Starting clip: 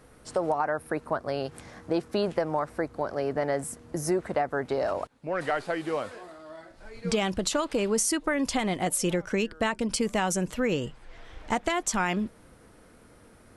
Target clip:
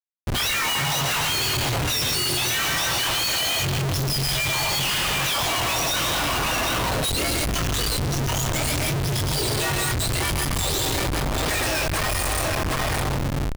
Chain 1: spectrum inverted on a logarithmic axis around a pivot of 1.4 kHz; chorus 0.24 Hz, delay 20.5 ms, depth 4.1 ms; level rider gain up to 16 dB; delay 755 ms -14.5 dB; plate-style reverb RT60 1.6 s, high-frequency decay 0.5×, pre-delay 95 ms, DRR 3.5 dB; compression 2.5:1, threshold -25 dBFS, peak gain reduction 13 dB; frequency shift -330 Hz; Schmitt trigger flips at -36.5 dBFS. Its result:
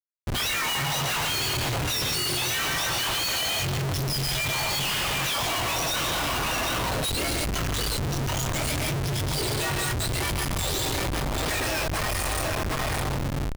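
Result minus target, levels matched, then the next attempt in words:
compression: peak gain reduction +3.5 dB
spectrum inverted on a logarithmic axis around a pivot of 1.4 kHz; chorus 0.24 Hz, delay 20.5 ms, depth 4.1 ms; level rider gain up to 16 dB; delay 755 ms -14.5 dB; plate-style reverb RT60 1.6 s, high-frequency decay 0.5×, pre-delay 95 ms, DRR 3.5 dB; compression 2.5:1, threshold -19 dBFS, peak gain reduction 9.5 dB; frequency shift -330 Hz; Schmitt trigger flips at -36.5 dBFS

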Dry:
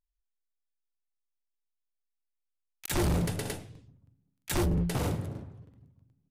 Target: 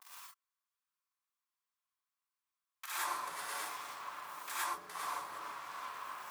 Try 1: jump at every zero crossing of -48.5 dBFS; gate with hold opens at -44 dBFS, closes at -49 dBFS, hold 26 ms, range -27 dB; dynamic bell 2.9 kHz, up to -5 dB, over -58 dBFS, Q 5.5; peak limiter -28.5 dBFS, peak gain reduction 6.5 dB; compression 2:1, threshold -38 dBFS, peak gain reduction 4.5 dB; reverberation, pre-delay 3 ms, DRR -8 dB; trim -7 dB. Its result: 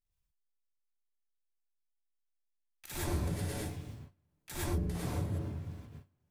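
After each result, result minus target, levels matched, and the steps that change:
1 kHz band -13.0 dB; jump at every zero crossing: distortion -11 dB
add after compression: resonant high-pass 1.1 kHz, resonance Q 4.6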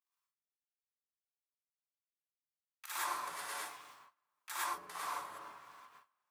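jump at every zero crossing: distortion -11 dB
change: jump at every zero crossing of -36.5 dBFS

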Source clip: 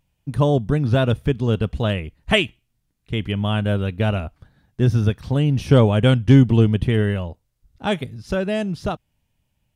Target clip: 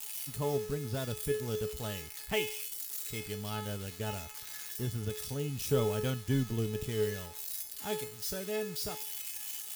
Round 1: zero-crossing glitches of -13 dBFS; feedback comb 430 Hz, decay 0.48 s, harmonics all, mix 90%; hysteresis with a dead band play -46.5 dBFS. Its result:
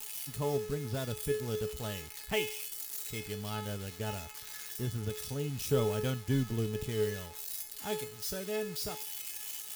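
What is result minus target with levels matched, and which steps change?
hysteresis with a dead band: distortion +10 dB
change: hysteresis with a dead band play -57.5 dBFS

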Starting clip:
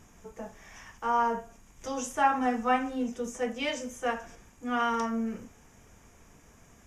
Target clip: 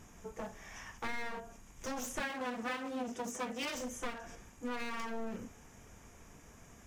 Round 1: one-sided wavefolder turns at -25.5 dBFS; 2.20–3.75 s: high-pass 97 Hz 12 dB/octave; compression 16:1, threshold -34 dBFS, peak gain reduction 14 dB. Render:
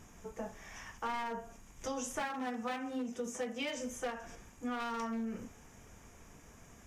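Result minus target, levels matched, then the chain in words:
one-sided wavefolder: distortion -14 dB
one-sided wavefolder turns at -36.5 dBFS; 2.20–3.75 s: high-pass 97 Hz 12 dB/octave; compression 16:1, threshold -34 dBFS, peak gain reduction 12 dB

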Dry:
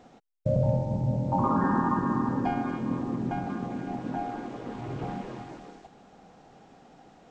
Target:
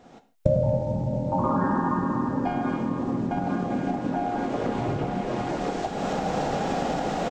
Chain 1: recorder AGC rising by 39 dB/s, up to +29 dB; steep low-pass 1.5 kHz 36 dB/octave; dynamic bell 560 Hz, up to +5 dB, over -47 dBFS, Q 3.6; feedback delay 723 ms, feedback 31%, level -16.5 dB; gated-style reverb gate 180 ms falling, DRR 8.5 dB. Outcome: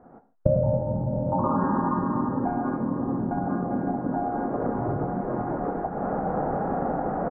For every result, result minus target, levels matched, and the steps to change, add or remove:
echo 269 ms early; 2 kHz band -5.0 dB
change: feedback delay 992 ms, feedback 31%, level -16.5 dB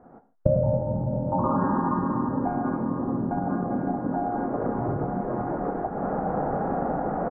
2 kHz band -5.0 dB
remove: steep low-pass 1.5 kHz 36 dB/octave

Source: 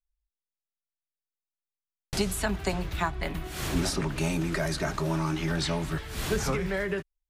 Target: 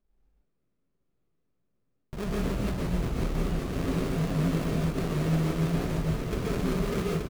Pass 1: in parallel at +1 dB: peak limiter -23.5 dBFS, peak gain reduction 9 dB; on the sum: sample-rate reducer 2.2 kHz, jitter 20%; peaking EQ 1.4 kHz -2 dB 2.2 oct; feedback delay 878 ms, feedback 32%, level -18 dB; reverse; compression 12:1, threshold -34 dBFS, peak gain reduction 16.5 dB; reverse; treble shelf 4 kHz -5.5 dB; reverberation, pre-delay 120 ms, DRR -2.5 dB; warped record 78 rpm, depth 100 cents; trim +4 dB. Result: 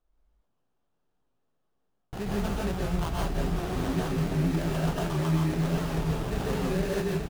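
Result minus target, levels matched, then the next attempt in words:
sample-rate reducer: distortion -6 dB
in parallel at +1 dB: peak limiter -23.5 dBFS, peak gain reduction 9 dB; on the sum: sample-rate reducer 830 Hz, jitter 20%; peaking EQ 1.4 kHz -2 dB 2.2 oct; feedback delay 878 ms, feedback 32%, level -18 dB; reverse; compression 12:1, threshold -34 dBFS, peak gain reduction 17 dB; reverse; treble shelf 4 kHz -5.5 dB; reverberation, pre-delay 120 ms, DRR -2.5 dB; warped record 78 rpm, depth 100 cents; trim +4 dB

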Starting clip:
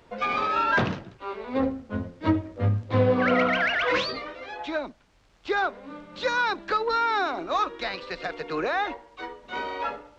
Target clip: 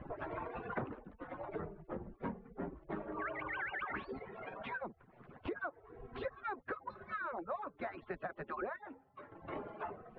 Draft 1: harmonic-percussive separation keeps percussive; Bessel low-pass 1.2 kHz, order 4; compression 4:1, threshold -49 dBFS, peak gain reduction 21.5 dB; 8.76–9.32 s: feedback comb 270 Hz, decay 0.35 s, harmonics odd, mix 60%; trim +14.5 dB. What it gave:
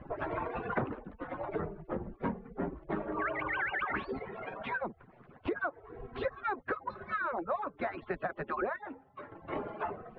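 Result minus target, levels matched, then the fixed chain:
compression: peak gain reduction -7 dB
harmonic-percussive separation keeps percussive; Bessel low-pass 1.2 kHz, order 4; compression 4:1, threshold -58 dBFS, peak gain reduction 28.5 dB; 8.76–9.32 s: feedback comb 270 Hz, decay 0.35 s, harmonics odd, mix 60%; trim +14.5 dB

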